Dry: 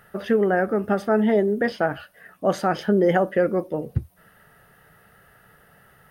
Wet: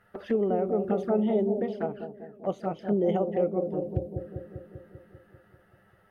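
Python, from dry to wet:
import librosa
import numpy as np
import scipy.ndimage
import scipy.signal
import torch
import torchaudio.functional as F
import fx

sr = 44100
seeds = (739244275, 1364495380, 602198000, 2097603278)

y = fx.lowpass(x, sr, hz=3300.0, slope=6)
y = fx.env_flanger(y, sr, rest_ms=10.8, full_db=-19.5)
y = fx.echo_bbd(y, sr, ms=196, stages=1024, feedback_pct=67, wet_db=-6.0)
y = fx.upward_expand(y, sr, threshold_db=-33.0, expansion=1.5, at=(1.6, 3.62))
y = y * 10.0 ** (-5.5 / 20.0)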